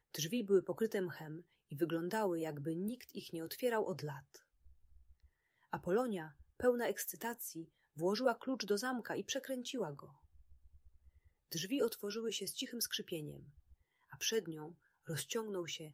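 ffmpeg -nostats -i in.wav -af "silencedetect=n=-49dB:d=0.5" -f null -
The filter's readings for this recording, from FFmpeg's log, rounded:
silence_start: 4.36
silence_end: 5.73 | silence_duration: 1.37
silence_start: 10.05
silence_end: 11.52 | silence_duration: 1.47
silence_start: 13.40
silence_end: 14.12 | silence_duration: 0.73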